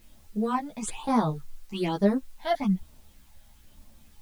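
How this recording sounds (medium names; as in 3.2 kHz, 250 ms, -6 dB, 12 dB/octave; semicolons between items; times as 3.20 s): phasing stages 8, 1.1 Hz, lowest notch 320–2800 Hz; a quantiser's noise floor 10-bit, dither triangular; a shimmering, thickened sound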